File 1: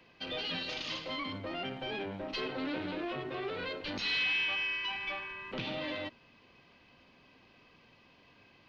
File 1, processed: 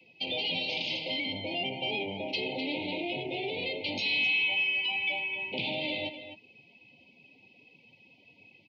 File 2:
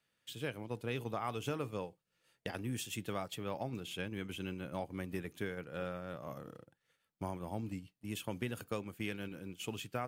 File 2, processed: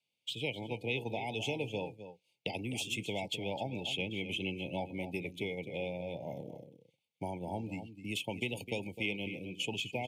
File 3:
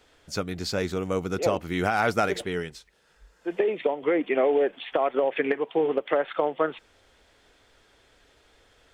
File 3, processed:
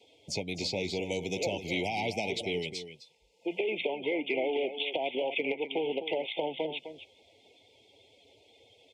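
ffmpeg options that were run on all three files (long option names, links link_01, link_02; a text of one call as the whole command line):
ffmpeg -i in.wav -filter_complex "[0:a]aresample=32000,aresample=44100,acrossover=split=340|2100[link_01][link_02][link_03];[link_01]acompressor=threshold=-41dB:ratio=4[link_04];[link_02]acompressor=threshold=-38dB:ratio=4[link_05];[link_03]acompressor=threshold=-44dB:ratio=4[link_06];[link_04][link_05][link_06]amix=inputs=3:normalize=0,asoftclip=type=tanh:threshold=-25dB,highpass=frequency=85:width=0.5412,highpass=frequency=85:width=1.3066,asplit=2[link_07][link_08];[link_08]aecho=0:1:257:0.299[link_09];[link_07][link_09]amix=inputs=2:normalize=0,afftdn=noise_reduction=12:noise_floor=-56,asuperstop=centerf=1400:order=20:qfactor=1.2,equalizer=frequency=2700:width=0.5:gain=8,volume=3dB" out.wav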